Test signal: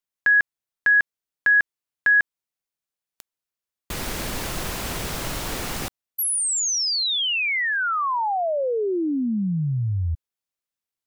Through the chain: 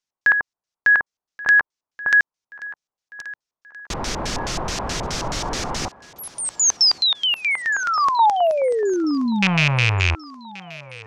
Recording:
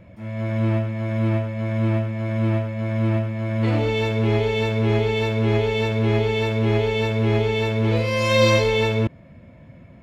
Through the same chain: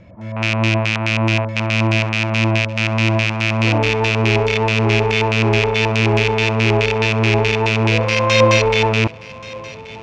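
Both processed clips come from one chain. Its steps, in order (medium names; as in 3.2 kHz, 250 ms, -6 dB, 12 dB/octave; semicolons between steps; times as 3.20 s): rattle on loud lows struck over -25 dBFS, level -9 dBFS; LFO low-pass square 4.7 Hz 960–5900 Hz; thinning echo 1129 ms, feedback 47%, high-pass 170 Hz, level -19 dB; trim +2.5 dB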